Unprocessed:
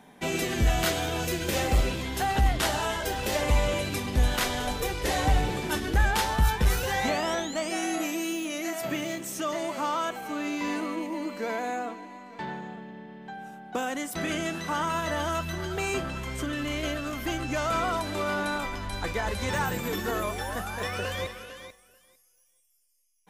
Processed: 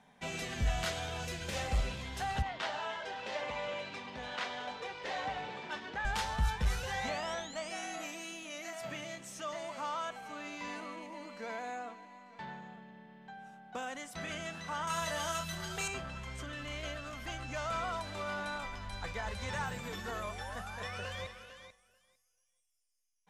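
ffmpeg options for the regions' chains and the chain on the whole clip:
ffmpeg -i in.wav -filter_complex "[0:a]asettb=1/sr,asplit=3[link_01][link_02][link_03];[link_01]atrim=end=2.424[link_04];[link_02]atrim=start=2.42:end=6.05,asetpts=PTS-STARTPTS,afade=type=in:duration=0.004:curve=qsin,afade=type=out:start_time=3.626:duration=0.004:curve=qsin,aeval=exprs='val(0)+0.00447*sin(2*PI*950*n/s)':channel_layout=same,highpass=270,lowpass=3800[link_05];[link_03]atrim=start=6.046[link_06];[link_04][link_05]acrossfade=duration=0.004:curve1=hsin:curve2=qsin[link_07];[link_07][link_06]acrossfade=duration=0.004:curve1=qsin:curve2=hsin,asettb=1/sr,asplit=3[link_08][link_09][link_10];[link_08]atrim=end=14.874[link_11];[link_09]atrim=start=14.87:end=15.88,asetpts=PTS-STARTPTS,afade=type=in:duration=0.004:curve=qsin,afade=type=out:start_time=1.006:duration=0.004:curve=qsin,aemphasis=mode=production:type=75kf,asplit=2[link_12][link_13];[link_13]adelay=30,volume=-6.5dB[link_14];[link_12][link_14]amix=inputs=2:normalize=0,atrim=end_sample=44541[link_15];[link_10]atrim=start=15.876[link_16];[link_11][link_15]acrossfade=duration=0.004:curve1=hsin:curve2=qsin[link_17];[link_17][link_16]acrossfade=duration=0.004:curve1=qsin:curve2=hsin,lowpass=7900,equalizer=frequency=330:width_type=o:width=0.69:gain=-12,volume=-8dB" out.wav

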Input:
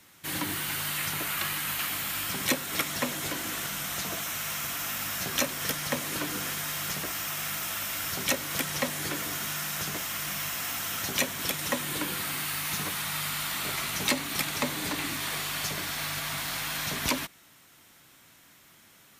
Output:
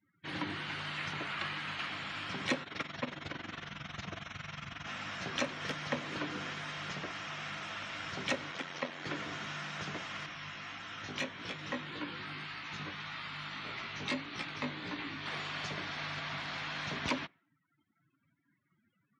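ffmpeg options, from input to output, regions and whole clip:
ffmpeg -i in.wav -filter_complex "[0:a]asettb=1/sr,asplit=3[link_01][link_02][link_03];[link_01]atrim=end=2.634[link_04];[link_02]atrim=start=2.63:end=4.87,asetpts=PTS-STARTPTS,afade=type=in:duration=0.004:curve=qsin,afade=type=out:start_time=2.236:duration=0.004:curve=qsin,lowpass=frequency=8700:width=0.5412,lowpass=frequency=8700:width=1.3066,asubboost=boost=6.5:cutoff=170,tremolo=f=22:d=0.788[link_05];[link_03]atrim=start=4.866[link_06];[link_04][link_05]acrossfade=duration=0.004:curve1=hsin:curve2=qsin[link_07];[link_07][link_06]acrossfade=duration=0.004:curve1=qsin:curve2=hsin,asettb=1/sr,asplit=3[link_08][link_09][link_10];[link_08]atrim=end=8.514[link_11];[link_09]atrim=start=8.51:end=9.06,asetpts=PTS-STARTPTS,afade=type=in:duration=0.004:curve=qsin,afade=type=out:start_time=0.546:duration=0.004:curve=qsin,highpass=230,tremolo=f=88:d=0.621[link_12];[link_10]atrim=start=9.056[link_13];[link_11][link_12]acrossfade=duration=0.004:curve1=hsin:curve2=qsin[link_14];[link_14][link_13]acrossfade=duration=0.004:curve1=qsin:curve2=hsin,asettb=1/sr,asplit=3[link_15][link_16][link_17];[link_15]atrim=end=10.264[link_18];[link_16]atrim=start=10.26:end=15.26,asetpts=PTS-STARTPTS,afade=type=in:duration=0.004:curve=qsin,afade=type=out:start_time=4.996:duration=0.004:curve=qsin,equalizer=frequency=670:width_type=o:width=0.74:gain=-3,flanger=delay=17:depth=2.7:speed=1.7[link_19];[link_17]atrim=start=15.256[link_20];[link_18][link_19]acrossfade=duration=0.004:curve1=hsin:curve2=qsin[link_21];[link_21][link_20]acrossfade=duration=0.004:curve1=qsin:curve2=hsin,lowpass=3600,afftdn=noise_reduction=33:noise_floor=-52,highpass=82,volume=-4dB" out.wav

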